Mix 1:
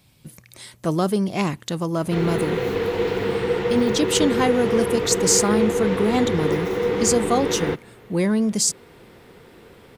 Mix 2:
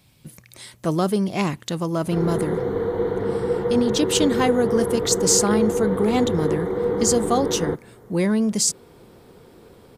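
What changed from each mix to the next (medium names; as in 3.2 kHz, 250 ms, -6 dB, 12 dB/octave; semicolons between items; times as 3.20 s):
background: add boxcar filter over 17 samples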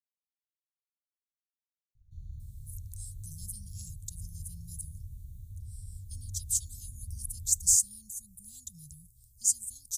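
speech: entry +2.40 s; master: add inverse Chebyshev band-stop 310–2000 Hz, stop band 70 dB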